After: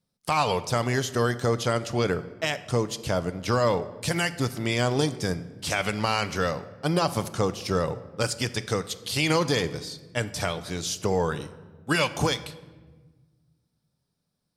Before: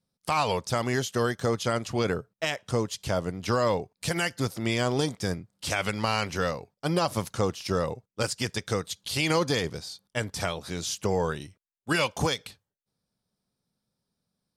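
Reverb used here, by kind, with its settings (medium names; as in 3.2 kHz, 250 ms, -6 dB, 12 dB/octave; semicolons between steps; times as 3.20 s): simulated room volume 1100 m³, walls mixed, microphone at 0.38 m; trim +1.5 dB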